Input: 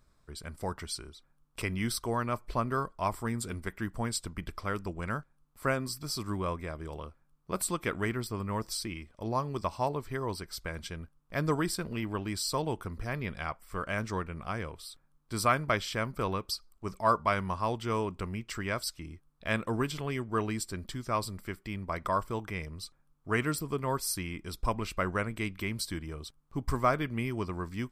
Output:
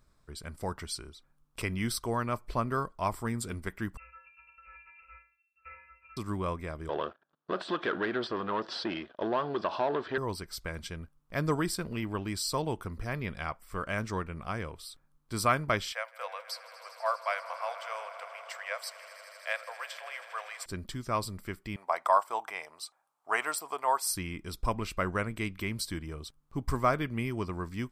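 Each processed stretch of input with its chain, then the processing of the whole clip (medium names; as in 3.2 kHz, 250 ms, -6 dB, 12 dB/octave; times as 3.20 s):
3.97–6.17 s: sorted samples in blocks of 32 samples + inharmonic resonator 320 Hz, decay 0.48 s, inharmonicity 0.008 + frequency inversion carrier 2.7 kHz
6.89–10.18 s: compression 16:1, threshold -31 dBFS + waveshaping leveller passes 3 + cabinet simulation 310–3800 Hz, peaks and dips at 370 Hz +4 dB, 640 Hz +6 dB, 1.6 kHz +7 dB, 2.2 kHz -9 dB, 3.4 kHz +5 dB
15.92–20.66 s: rippled Chebyshev high-pass 500 Hz, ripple 6 dB + echo with a slow build-up 80 ms, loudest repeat 5, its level -18 dB
21.76–24.11 s: resonant high-pass 760 Hz, resonance Q 3.8 + peaking EQ 8.3 kHz +4 dB 0.35 oct
whole clip: none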